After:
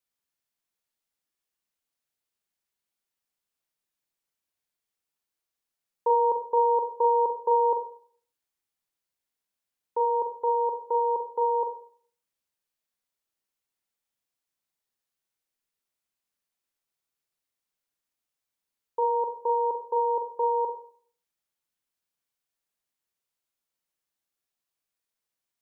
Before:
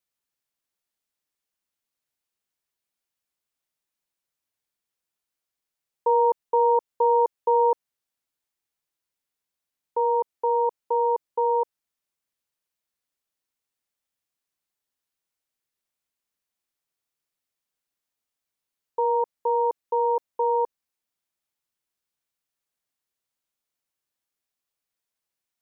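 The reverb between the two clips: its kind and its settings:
four-comb reverb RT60 0.53 s, combs from 33 ms, DRR 5 dB
level −2.5 dB

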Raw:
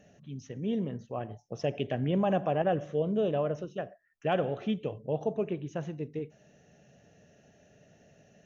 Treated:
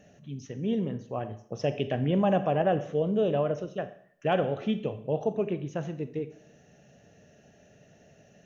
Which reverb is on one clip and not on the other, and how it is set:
four-comb reverb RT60 0.63 s, combs from 28 ms, DRR 12 dB
level +2.5 dB

